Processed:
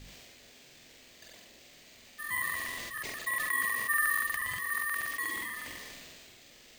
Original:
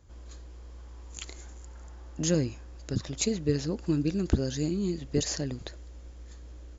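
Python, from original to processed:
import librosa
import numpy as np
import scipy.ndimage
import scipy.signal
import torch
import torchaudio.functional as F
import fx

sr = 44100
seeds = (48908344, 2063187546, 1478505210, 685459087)

y = fx.sine_speech(x, sr)
y = y * np.sin(2.0 * np.pi * 1500.0 * np.arange(len(y)) / sr)
y = fx.echo_feedback(y, sr, ms=163, feedback_pct=44, wet_db=-11)
y = fx.quant_dither(y, sr, seeds[0], bits=8, dither='triangular')
y = fx.add_hum(y, sr, base_hz=50, snr_db=11)
y = np.repeat(scipy.signal.resample_poly(y, 1, 4), 4)[:len(y)]
y = fx.band_shelf(y, sr, hz=1100.0, db=-9.5, octaves=1.1)
y = fx.hum_notches(y, sr, base_hz=50, count=4)
y = fx.doubler(y, sr, ms=46.0, db=-3.5)
y = fx.buffer_crackle(y, sr, first_s=0.41, period_s=0.12, block=2048, kind='repeat')
y = fx.sustainer(y, sr, db_per_s=20.0)
y = y * 10.0 ** (-3.0 / 20.0)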